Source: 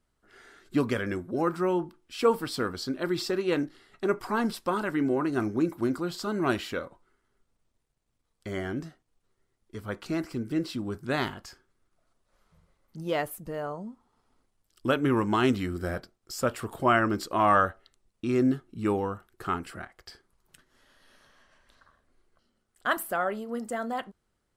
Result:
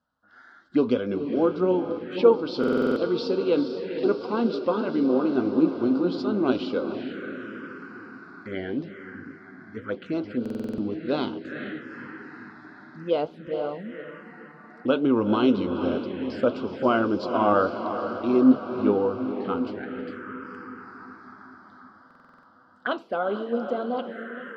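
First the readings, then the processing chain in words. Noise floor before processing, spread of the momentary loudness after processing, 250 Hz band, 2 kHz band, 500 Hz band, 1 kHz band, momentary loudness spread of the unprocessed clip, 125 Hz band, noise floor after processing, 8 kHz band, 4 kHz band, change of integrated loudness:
−77 dBFS, 19 LU, +5.5 dB, −2.0 dB, +6.0 dB, −0.5 dB, 13 LU, −2.5 dB, −53 dBFS, below −15 dB, 0.0 dB, +3.5 dB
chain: on a send: feedback delay with all-pass diffusion 459 ms, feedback 65%, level −8.5 dB
on the sum: flanger 1.8 Hz, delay 4.7 ms, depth 5.3 ms, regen +69%
loudspeaker in its box 120–4,500 Hz, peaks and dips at 130 Hz −9 dB, 260 Hz +6 dB, 490 Hz +8 dB, 1,500 Hz +8 dB
phaser swept by the level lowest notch 390 Hz, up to 1,800 Hz, full sweep at −29 dBFS
buffer that repeats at 0:02.59/0:10.41/0:22.06, samples 2,048, times 7
level +6 dB

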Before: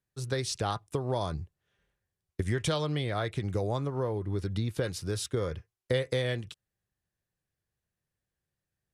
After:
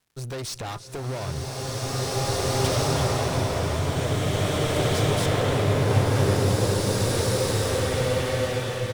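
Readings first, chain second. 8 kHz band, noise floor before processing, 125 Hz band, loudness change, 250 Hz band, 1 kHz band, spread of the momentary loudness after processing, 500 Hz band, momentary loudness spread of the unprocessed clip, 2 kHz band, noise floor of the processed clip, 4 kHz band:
+12.5 dB, below −85 dBFS, +10.0 dB, +8.0 dB, +8.5 dB, +10.0 dB, 10 LU, +8.5 dB, 8 LU, +9.5 dB, −35 dBFS, +10.0 dB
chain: one scale factor per block 7 bits
surface crackle 220 per second −61 dBFS
on a send: single-tap delay 337 ms −18 dB
on the sum: tube saturation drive 38 dB, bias 0.5
slow-attack reverb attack 2,320 ms, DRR −10.5 dB
level +8 dB

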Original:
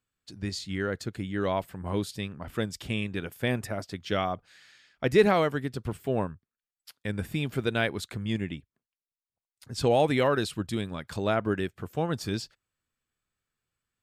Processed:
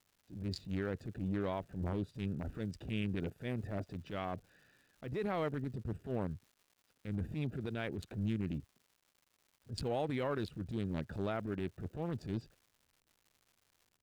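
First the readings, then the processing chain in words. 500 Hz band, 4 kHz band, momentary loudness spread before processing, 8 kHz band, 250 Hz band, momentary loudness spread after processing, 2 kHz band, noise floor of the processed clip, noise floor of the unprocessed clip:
−12.5 dB, −14.5 dB, 12 LU, −17.5 dB, −7.5 dB, 7 LU, −14.0 dB, −78 dBFS, below −85 dBFS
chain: adaptive Wiener filter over 41 samples
dynamic equaliser 6,900 Hz, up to −5 dB, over −53 dBFS, Q 0.75
downward compressor, threshold −32 dBFS, peak gain reduction 16.5 dB
brickwall limiter −31 dBFS, peak gain reduction 11 dB
transient designer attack −11 dB, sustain +1 dB
surface crackle 280 per second −61 dBFS
level +4.5 dB

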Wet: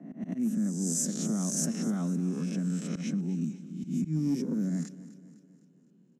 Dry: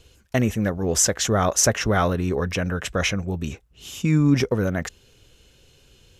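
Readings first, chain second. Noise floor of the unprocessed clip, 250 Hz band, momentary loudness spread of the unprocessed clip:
−57 dBFS, −4.5 dB, 12 LU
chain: peak hold with a rise ahead of every peak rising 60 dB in 0.89 s
Butterworth high-pass 160 Hz 72 dB per octave
volume swells 126 ms
drawn EQ curve 250 Hz 0 dB, 470 Hz −22 dB, 3,200 Hz −27 dB, 8,300 Hz −5 dB
in parallel at −6 dB: gain into a clipping stage and back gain 19 dB
on the sum: downward compressor 2.5 to 1, threshold −30 dBFS, peak gain reduction 9.5 dB
low-pass that shuts in the quiet parts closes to 1,300 Hz, open at −23.5 dBFS
on a send: repeating echo 254 ms, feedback 51%, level −16.5 dB

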